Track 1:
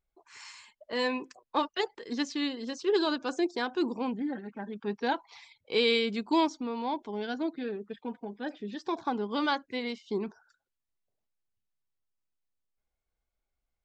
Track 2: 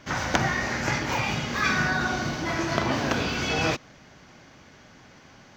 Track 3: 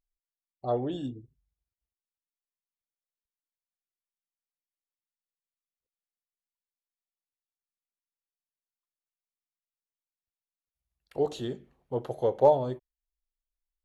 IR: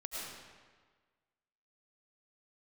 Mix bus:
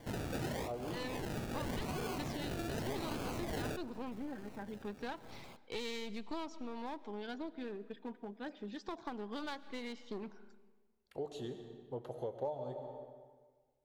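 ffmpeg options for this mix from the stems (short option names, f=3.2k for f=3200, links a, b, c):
-filter_complex "[0:a]aeval=exprs='clip(val(0),-1,0.0168)':c=same,volume=-6dB,asplit=2[a][b];[b]volume=-18.5dB[c];[1:a]acrusher=samples=33:mix=1:aa=0.000001:lfo=1:lforange=19.8:lforate=0.86,asoftclip=type=tanh:threshold=-21.5dB,volume=-4dB,asplit=2[d][e];[e]volume=-23dB[f];[2:a]volume=-9dB,asplit=3[g][h][i];[h]volume=-7.5dB[j];[i]apad=whole_len=245365[k];[d][k]sidechaincompress=threshold=-43dB:ratio=8:attack=7.5:release=569[l];[3:a]atrim=start_sample=2205[m];[c][f][j]amix=inputs=3:normalize=0[n];[n][m]afir=irnorm=-1:irlink=0[o];[a][l][g][o]amix=inputs=4:normalize=0,acompressor=threshold=-39dB:ratio=3"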